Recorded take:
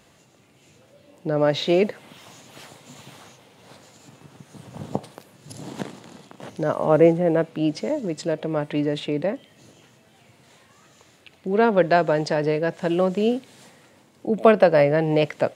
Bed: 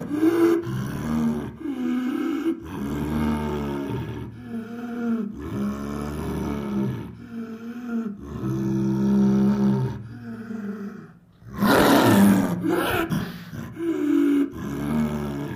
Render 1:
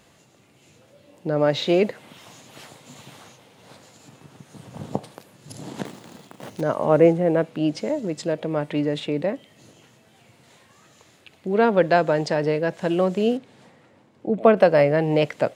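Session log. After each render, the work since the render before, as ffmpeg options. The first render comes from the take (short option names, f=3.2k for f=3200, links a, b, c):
-filter_complex "[0:a]asettb=1/sr,asplit=3[a][b][c];[a]atrim=end=5.854[d];[b]atrim=start=5.85:end=6.61,asetpts=PTS-STARTPTS,afade=t=in:d=0.004:c=qsin,afade=t=out:st=0.756:d=0.004:c=qsin,acrusher=bits=3:mode=log:mix=0:aa=0.000001[e];[c]atrim=start=6.606[f];[d][e]acrossfade=d=0.004:c1=hsin:c2=qsin[g];[g][f]acrossfade=d=0.004:c1=qsin:c2=hsin,asettb=1/sr,asplit=3[h][i][j];[h]atrim=end=13.374[k];[i]atrim=start=13.37:end=14.57,asetpts=PTS-STARTPTS,afade=t=in:d=0.004:c=qsin,afade=t=out:st=1.196:d=0.004:c=qsin,lowpass=f=1.8k:p=1[l];[j]atrim=start=14.566[m];[k][l]acrossfade=d=0.004:c1=hsin:c2=qsin[n];[n][m]acrossfade=d=0.004:c1=qsin:c2=hsin"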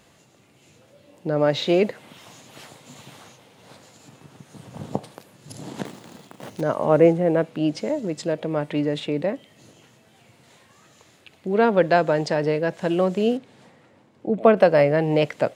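-af anull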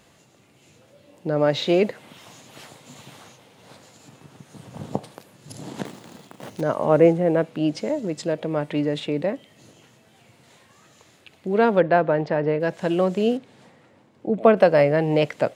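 -filter_complex "[0:a]asplit=3[a][b][c];[a]afade=t=out:st=11.8:d=0.02[d];[b]lowpass=2.2k,afade=t=in:st=11.8:d=0.02,afade=t=out:st=12.59:d=0.02[e];[c]afade=t=in:st=12.59:d=0.02[f];[d][e][f]amix=inputs=3:normalize=0"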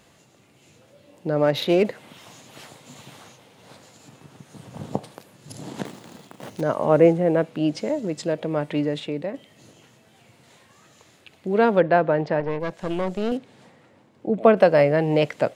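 -filter_complex "[0:a]asettb=1/sr,asplit=3[a][b][c];[a]atrim=end=1.424[d];[b]atrim=start=1.42:end=1.85,asetpts=PTS-STARTPTS,afade=t=in:d=0.004:c=qsin,afade=t=out:st=0.426:d=0.004:c=qsin,adynamicsmooth=sensitivity=5:basefreq=3.5k[e];[c]atrim=start=1.846[f];[d][e]acrossfade=d=0.004:c1=hsin:c2=qsin[g];[g][f]acrossfade=d=0.004:c1=qsin:c2=hsin,asettb=1/sr,asplit=3[h][i][j];[h]atrim=end=12.404[k];[i]atrim=start=12.4:end=13.32,asetpts=PTS-STARTPTS,afade=t=in:d=0.004:c=qsin,afade=t=out:st=0.916:d=0.004:c=qsin,aeval=exprs='(tanh(10*val(0)+0.75)-tanh(0.75))/10':c=same[l];[j]atrim=start=13.316[m];[k][l]acrossfade=d=0.004:c1=hsin:c2=qsin[n];[n][m]acrossfade=d=0.004:c1=qsin:c2=hsin,asplit=2[o][p];[o]atrim=end=9.34,asetpts=PTS-STARTPTS,afade=t=out:st=8.78:d=0.56:silence=0.473151[q];[p]atrim=start=9.34,asetpts=PTS-STARTPTS,afade=t=in:d=0.004:c=hsin:silence=0.473151[r];[q][r]concat=n=2:v=0:a=1"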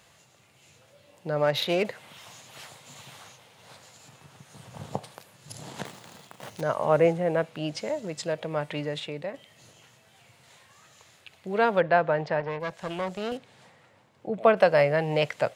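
-af "highpass=64,equalizer=f=280:t=o:w=1.5:g=-12"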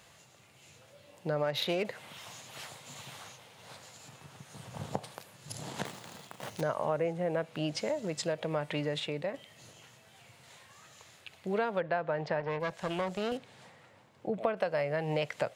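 -af "acompressor=threshold=-28dB:ratio=6"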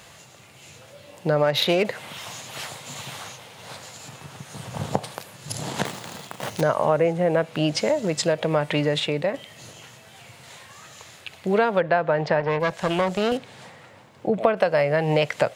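-af "volume=11dB"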